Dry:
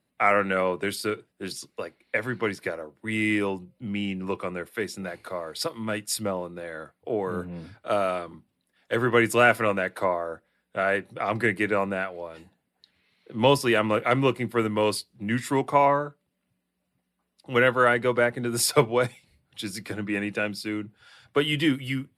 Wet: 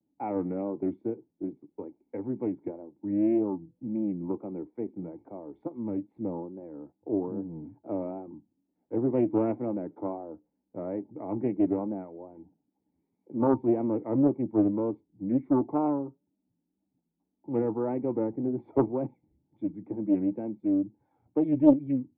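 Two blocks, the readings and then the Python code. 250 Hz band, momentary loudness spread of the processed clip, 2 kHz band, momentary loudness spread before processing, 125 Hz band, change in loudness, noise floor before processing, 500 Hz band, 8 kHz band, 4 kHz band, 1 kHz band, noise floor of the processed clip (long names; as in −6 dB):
+2.5 dB, 16 LU, below −30 dB, 15 LU, −5.5 dB, −4.0 dB, −77 dBFS, −6.0 dB, below −40 dB, below −40 dB, −12.0 dB, −81 dBFS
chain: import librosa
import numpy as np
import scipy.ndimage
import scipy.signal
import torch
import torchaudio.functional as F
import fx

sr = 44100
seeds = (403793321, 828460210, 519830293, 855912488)

y = fx.wow_flutter(x, sr, seeds[0], rate_hz=2.1, depth_cents=140.0)
y = fx.formant_cascade(y, sr, vowel='u')
y = fx.doppler_dist(y, sr, depth_ms=0.54)
y = y * librosa.db_to_amplitude(7.0)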